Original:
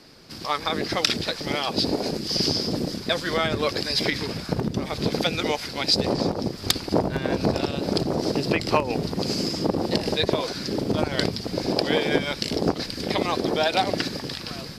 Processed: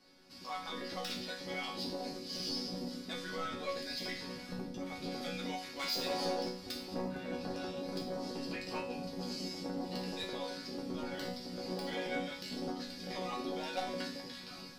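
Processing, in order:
0:05.79–0:06.49: mid-hump overdrive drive 17 dB, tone 6,300 Hz, clips at −7.5 dBFS
soft clipping −17.5 dBFS, distortion −12 dB
resonators tuned to a chord F#3 sus4, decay 0.51 s
level +6 dB

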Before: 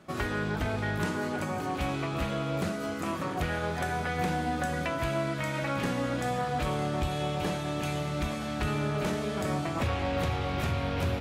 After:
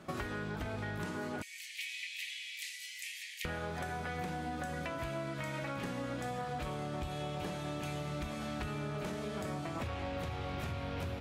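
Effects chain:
0:01.42–0:03.45: Butterworth high-pass 1,900 Hz 96 dB per octave
downward compressor 6 to 1, threshold −38 dBFS, peak gain reduction 12 dB
level +1.5 dB

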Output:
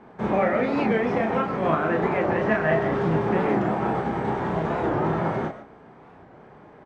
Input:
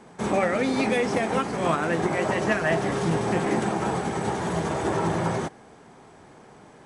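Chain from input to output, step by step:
low-pass filter 2,100 Hz 12 dB per octave
double-tracking delay 32 ms −4 dB
on a send at −11 dB: convolution reverb RT60 0.15 s, pre-delay 90 ms
on the sum: wow of a warped record 45 rpm, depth 160 cents

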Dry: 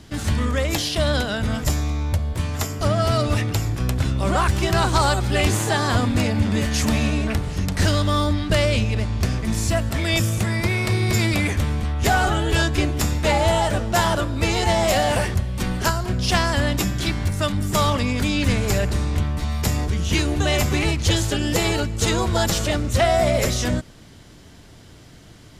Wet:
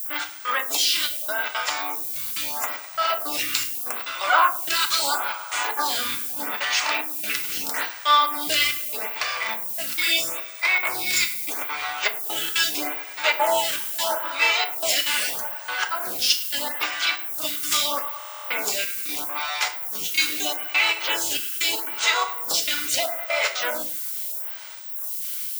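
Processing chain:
high-pass filter 1,300 Hz 12 dB per octave
high-shelf EQ 5,800 Hz −6.5 dB
notch filter 1,800 Hz, Q 14
in parallel at +2 dB: downward compressor, threshold −34 dBFS, peak gain reduction 12.5 dB
on the sum: gate pattern "xxx...xx.xx" 195 BPM −60 dB
granular cloud 183 ms, grains 15 per second, spray 28 ms, pitch spread up and down by 0 semitones
background noise violet −39 dBFS
on a send: feedback echo with a low-pass in the loop 102 ms, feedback 77%, low-pass 3,900 Hz, level −16.5 dB
on the sum: feedback delay network reverb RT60 0.45 s, low-frequency decay 1.05×, high-frequency decay 0.8×, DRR 4 dB
buffer that repeats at 0:18.18, samples 1,024, times 13
phaser with staggered stages 0.78 Hz
level +8 dB

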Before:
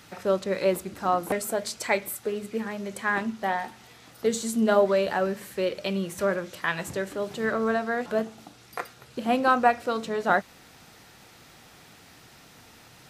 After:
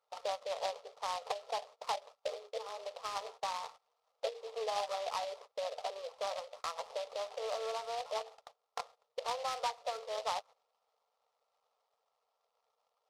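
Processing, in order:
formants moved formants +4 semitones
linear-phase brick-wall band-pass 420–1,400 Hz
harmonic and percussive parts rebalanced harmonic −7 dB
dynamic equaliser 700 Hz, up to +3 dB, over −45 dBFS, Q 0.85
downward compressor 3 to 1, threshold −33 dBFS, peak gain reduction 11.5 dB
noise gate −50 dBFS, range −17 dB
short delay modulated by noise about 3,300 Hz, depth 0.068 ms
level −2.5 dB

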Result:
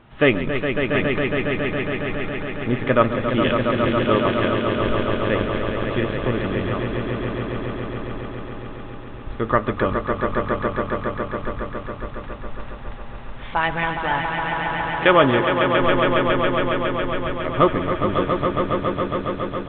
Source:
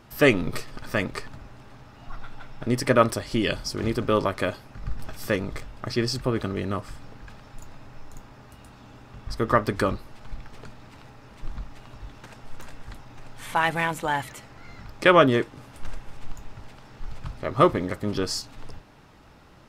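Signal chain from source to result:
0:03.28–0:04.46: bit-depth reduction 6 bits, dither triangular
echo that builds up and dies away 138 ms, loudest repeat 5, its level −7 dB
downsampling to 8,000 Hz
level +1.5 dB

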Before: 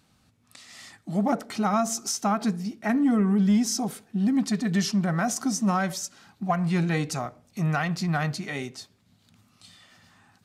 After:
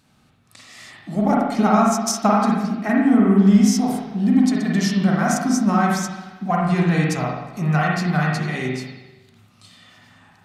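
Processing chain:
0:01.15–0:02.29: transient designer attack +7 dB, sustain −8 dB
spring reverb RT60 1.1 s, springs 39/47 ms, chirp 50 ms, DRR −3 dB
level +2 dB

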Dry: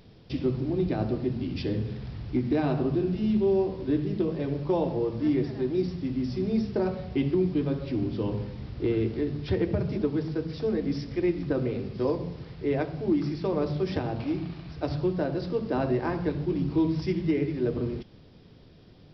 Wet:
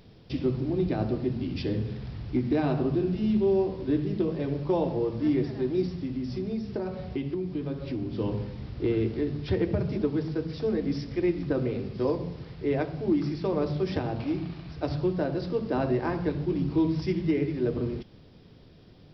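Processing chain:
0:05.86–0:08.18: downward compressor, threshold −28 dBFS, peak gain reduction 8 dB

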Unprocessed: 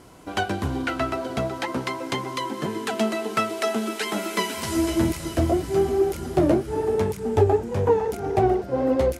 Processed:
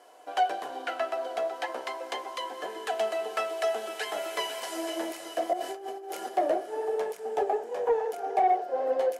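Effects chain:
four-pole ladder high-pass 440 Hz, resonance 40%
rectangular room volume 700 cubic metres, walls furnished, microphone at 0.53 metres
0:05.53–0:06.29: compressor whose output falls as the input rises −39 dBFS, ratio −1
hollow resonant body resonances 730/1,700/3,000 Hz, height 11 dB, ringing for 60 ms
soft clipping −15 dBFS, distortion −21 dB

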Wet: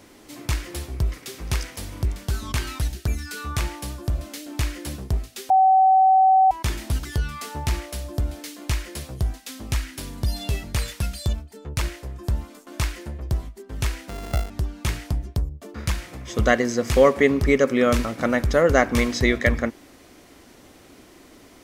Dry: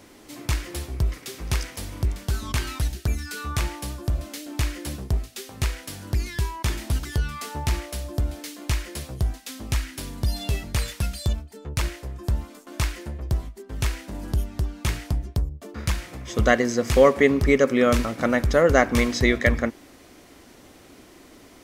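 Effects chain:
0:05.50–0:06.51: beep over 761 Hz −12 dBFS
0:14.09–0:14.50: samples sorted by size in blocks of 64 samples

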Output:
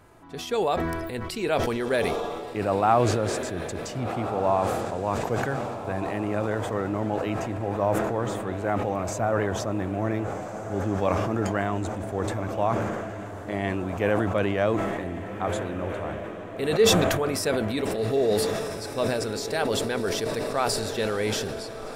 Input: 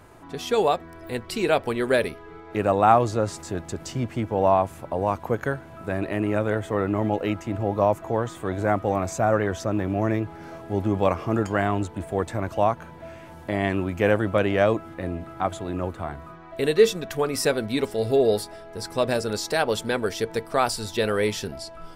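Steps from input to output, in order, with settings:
feedback delay with all-pass diffusion 1,524 ms, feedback 60%, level −10 dB
level that may fall only so fast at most 28 dB per second
level −4.5 dB

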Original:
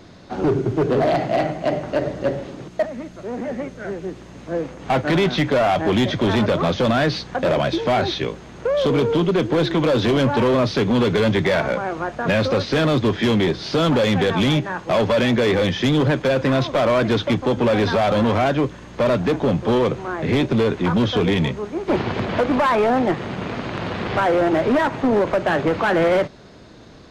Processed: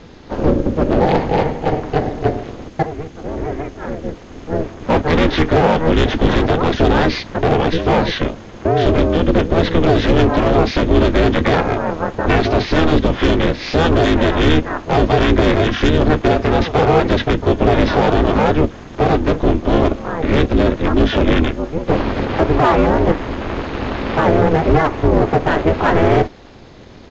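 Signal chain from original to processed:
pitch-shifted copies added −12 semitones 0 dB, −4 semitones −5 dB
ring modulation 160 Hz
downsampling to 16,000 Hz
level +4 dB

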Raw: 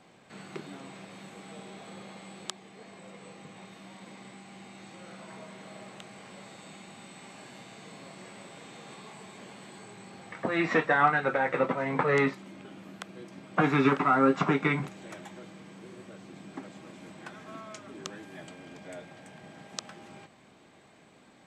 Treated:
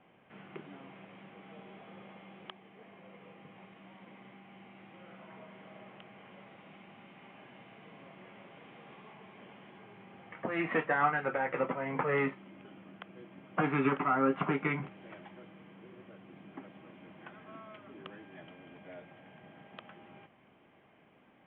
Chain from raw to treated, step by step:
Chebyshev low-pass filter 3,200 Hz, order 6
level −5 dB

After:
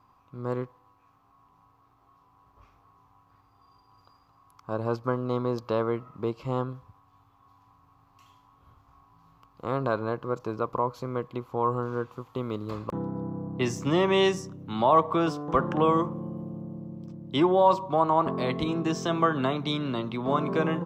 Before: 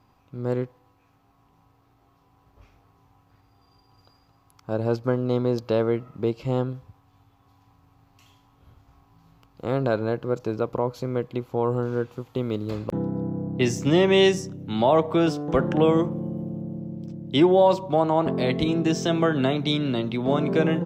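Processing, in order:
parametric band 1,100 Hz +13.5 dB 0.52 octaves
level −5.5 dB

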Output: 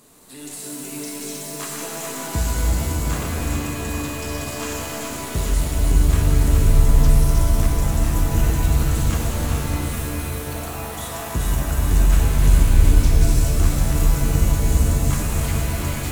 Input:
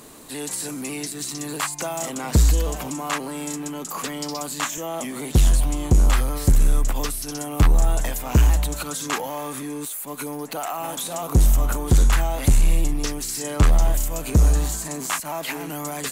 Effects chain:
feedback delay that plays each chunk backwards 212 ms, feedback 75%, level −4.5 dB
bass and treble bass +3 dB, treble +3 dB
reverb with rising layers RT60 3.2 s, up +7 semitones, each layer −2 dB, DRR −1.5 dB
level −10.5 dB

